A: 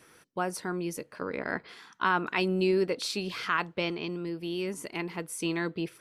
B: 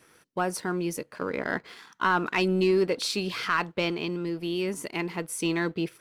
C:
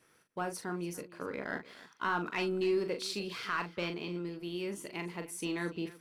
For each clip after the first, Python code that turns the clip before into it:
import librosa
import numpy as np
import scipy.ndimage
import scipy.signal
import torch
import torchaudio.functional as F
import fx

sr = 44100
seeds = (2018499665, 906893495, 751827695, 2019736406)

y1 = fx.leveller(x, sr, passes=1)
y2 = fx.echo_multitap(y1, sr, ms=(40, 291), db=(-7.5, -18.5))
y2 = F.gain(torch.from_numpy(y2), -9.0).numpy()